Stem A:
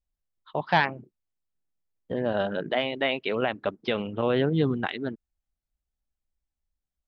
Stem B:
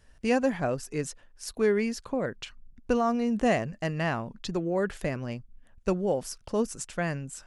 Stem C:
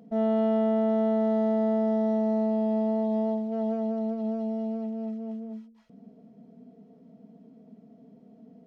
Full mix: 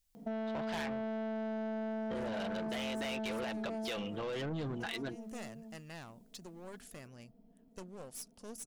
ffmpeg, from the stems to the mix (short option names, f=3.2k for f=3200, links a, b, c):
-filter_complex "[0:a]highshelf=f=2k:g=7,aecho=1:1:6:0.36,alimiter=limit=-16dB:level=0:latency=1:release=25,volume=2dB[a];[1:a]aemphasis=mode=production:type=50fm,aeval=exprs='clip(val(0),-1,0.0211)':c=same,adelay=1900,volume=-19dB[b];[2:a]equalizer=f=910:w=3.6:g=5,adelay=150,volume=-1dB,afade=t=out:st=3.73:d=0.26:silence=0.251189[c];[a][b][c]amix=inputs=3:normalize=0,highshelf=f=3.5k:g=7,asoftclip=type=tanh:threshold=-25dB,acompressor=threshold=-37dB:ratio=6"